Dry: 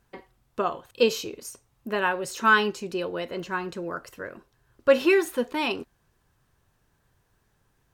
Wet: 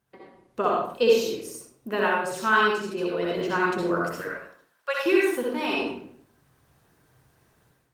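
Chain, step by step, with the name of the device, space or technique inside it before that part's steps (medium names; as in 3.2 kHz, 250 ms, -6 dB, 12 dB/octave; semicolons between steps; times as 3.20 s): 4.21–5.06 s: Bessel high-pass 1 kHz, order 6; far-field microphone of a smart speaker (reverberation RT60 0.60 s, pre-delay 58 ms, DRR -3.5 dB; high-pass 99 Hz 12 dB/octave; level rider gain up to 12 dB; trim -7.5 dB; Opus 24 kbps 48 kHz)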